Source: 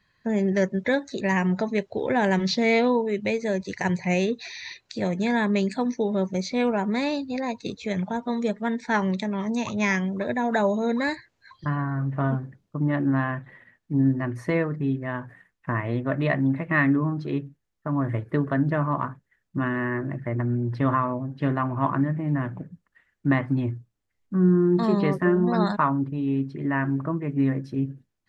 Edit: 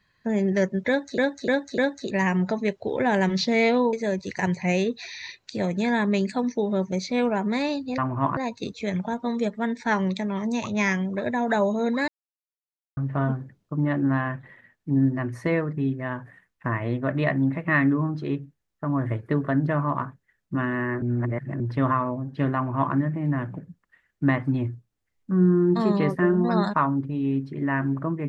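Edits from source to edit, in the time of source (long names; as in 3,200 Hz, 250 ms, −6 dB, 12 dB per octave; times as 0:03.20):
0:00.88–0:01.18: repeat, 4 plays
0:03.03–0:03.35: remove
0:11.11–0:12.00: silence
0:20.05–0:20.63: reverse
0:21.58–0:21.97: duplicate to 0:07.40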